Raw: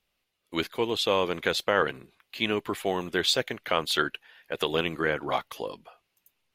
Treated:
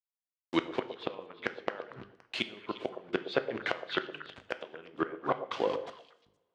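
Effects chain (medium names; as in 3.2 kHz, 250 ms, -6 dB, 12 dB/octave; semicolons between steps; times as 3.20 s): send-on-delta sampling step -40.5 dBFS; hum notches 50/100/150/200/250/300/350/400/450 Hz; gate with hold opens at -49 dBFS; low-pass that closes with the level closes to 2.1 kHz, closed at -26 dBFS; inverted gate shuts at -18 dBFS, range -28 dB; saturation -18 dBFS, distortion -18 dB; band-pass 140–5200 Hz; on a send: repeats whose band climbs or falls 117 ms, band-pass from 530 Hz, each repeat 1.4 oct, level -8 dB; on the sum: two-slope reverb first 0.61 s, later 1.9 s, from -21 dB, DRR 10.5 dB; trim +5 dB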